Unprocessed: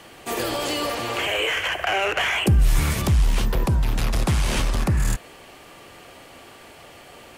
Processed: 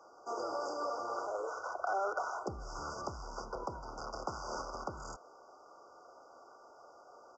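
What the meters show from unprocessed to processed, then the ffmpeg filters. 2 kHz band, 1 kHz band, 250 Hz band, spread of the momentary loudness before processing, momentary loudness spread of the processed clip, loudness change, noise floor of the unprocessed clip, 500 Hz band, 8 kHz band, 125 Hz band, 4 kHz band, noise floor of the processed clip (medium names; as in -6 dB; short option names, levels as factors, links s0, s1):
-20.5 dB, -8.5 dB, -21.0 dB, 6 LU, 21 LU, -17.0 dB, -46 dBFS, -10.5 dB, -19.5 dB, -30.5 dB, -26.0 dB, -59 dBFS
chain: -filter_complex "[0:a]afftfilt=real='re*(1-between(b*sr/4096,1500,4700))':imag='im*(1-between(b*sr/4096,1500,4700))':win_size=4096:overlap=0.75,aresample=16000,aresample=44100,acrossover=split=400 5500:gain=0.0708 1 0.0891[s0][s1][s2];[s0][s1][s2]amix=inputs=3:normalize=0,volume=0.398"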